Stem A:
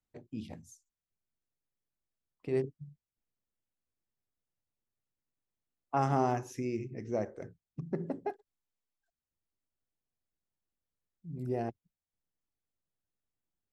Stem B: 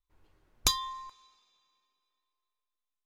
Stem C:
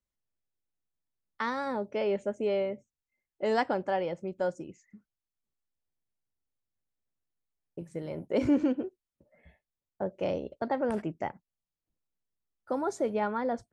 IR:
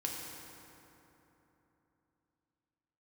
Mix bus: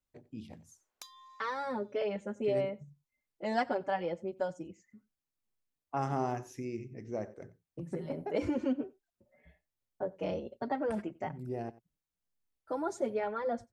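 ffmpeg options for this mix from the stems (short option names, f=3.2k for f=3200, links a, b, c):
-filter_complex "[0:a]volume=-4dB,asplit=2[a][b];[b]volume=-19dB[c];[1:a]highpass=510,acompressor=threshold=-37dB:ratio=4,adelay=350,volume=-12dB[d];[2:a]asplit=2[e][f];[f]adelay=4.9,afreqshift=1.6[g];[e][g]amix=inputs=2:normalize=1,volume=-0.5dB,asplit=2[h][i];[i]volume=-24dB[j];[c][j]amix=inputs=2:normalize=0,aecho=0:1:91:1[k];[a][d][h][k]amix=inputs=4:normalize=0"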